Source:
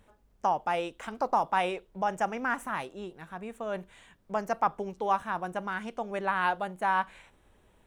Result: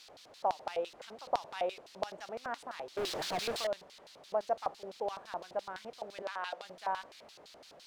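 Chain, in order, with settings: added noise pink -46 dBFS; LFO band-pass square 5.9 Hz 600–4200 Hz; 2.97–3.67 sample leveller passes 5; 6.22–6.65 weighting filter A; gain +1 dB

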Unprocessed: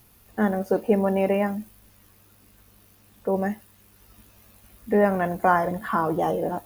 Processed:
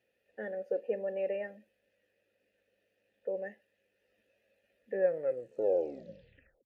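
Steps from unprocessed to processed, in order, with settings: tape stop at the end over 1.79 s; vowel filter e; gain -3 dB

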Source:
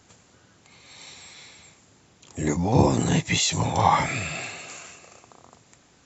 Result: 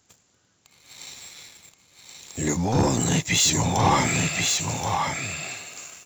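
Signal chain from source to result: high shelf 4200 Hz +10 dB; sample leveller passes 2; echo 1.076 s -4 dB; gain -7.5 dB

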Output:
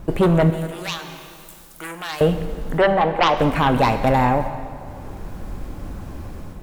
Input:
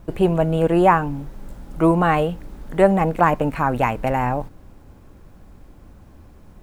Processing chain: 2.78–3.37 three-band isolator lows -12 dB, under 440 Hz, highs -17 dB, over 2300 Hz; sine folder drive 10 dB, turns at -2.5 dBFS; 0.5–2.21 pre-emphasis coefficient 0.97; plate-style reverb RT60 1.8 s, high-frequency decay 0.85×, DRR 8 dB; AGC gain up to 5.5 dB; gain -6.5 dB

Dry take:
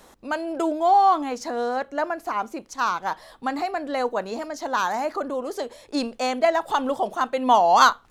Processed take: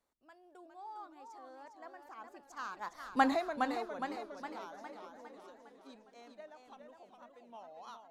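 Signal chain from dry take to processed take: Doppler pass-by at 3.23, 27 m/s, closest 1.9 m; warbling echo 0.41 s, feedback 52%, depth 122 cents, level -6 dB

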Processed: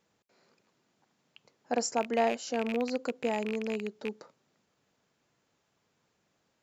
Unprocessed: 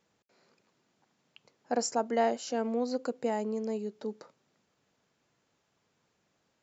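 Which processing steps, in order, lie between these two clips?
rattling part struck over -49 dBFS, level -25 dBFS

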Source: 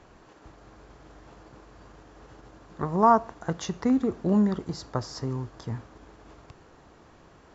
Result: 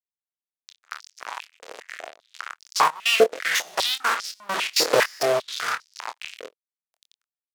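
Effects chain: stepped spectrum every 0.1 s; AGC gain up to 9.5 dB; fuzz box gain 41 dB, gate -35 dBFS; step gate "..xx.xxx" 167 bpm -24 dB; doubler 25 ms -8 dB; rotary speaker horn 6.3 Hz, later 0.9 Hz, at 0.3; stepped high-pass 5 Hz 480–5100 Hz

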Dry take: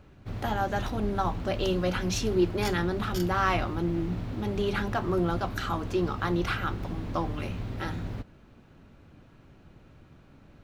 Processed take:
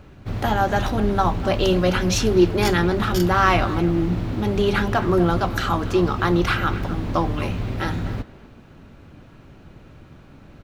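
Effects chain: speakerphone echo 0.25 s, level -14 dB; gain +8.5 dB

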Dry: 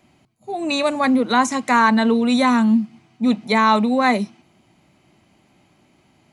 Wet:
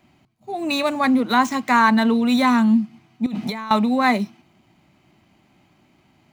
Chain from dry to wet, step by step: median filter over 5 samples; bell 490 Hz -5 dB 0.59 oct; 3.26–3.71 negative-ratio compressor -28 dBFS, ratio -1

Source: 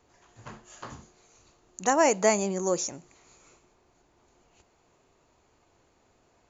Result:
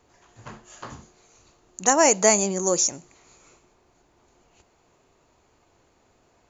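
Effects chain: dynamic EQ 6800 Hz, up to +8 dB, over -46 dBFS, Q 0.81; gain +3 dB

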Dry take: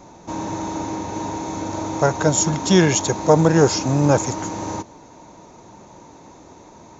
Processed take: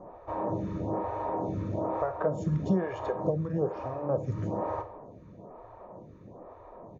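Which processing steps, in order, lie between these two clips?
LPF 1100 Hz 12 dB/oct; comb 1.7 ms, depth 49%; compressor 8:1, threshold -23 dBFS, peak gain reduction 15.5 dB; on a send at -8.5 dB: reverb RT60 0.70 s, pre-delay 9 ms; on the sum: photocell phaser 1.1 Hz

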